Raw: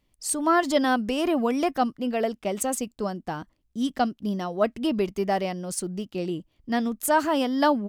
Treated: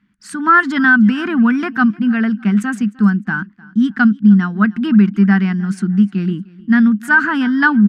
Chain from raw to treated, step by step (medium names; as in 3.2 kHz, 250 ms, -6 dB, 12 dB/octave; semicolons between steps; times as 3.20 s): two resonant band-passes 560 Hz, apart 2.9 oct; on a send: feedback delay 305 ms, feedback 35%, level -23 dB; on the sum: loudness maximiser +25 dB; trim -1.5 dB